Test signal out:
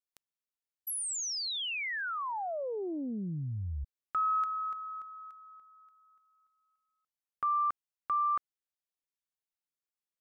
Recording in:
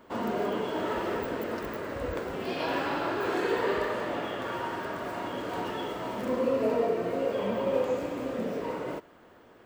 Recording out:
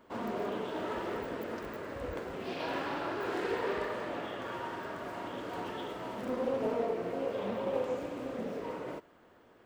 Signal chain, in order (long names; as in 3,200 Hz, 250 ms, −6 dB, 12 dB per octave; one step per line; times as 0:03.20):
highs frequency-modulated by the lows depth 0.29 ms
level −5.5 dB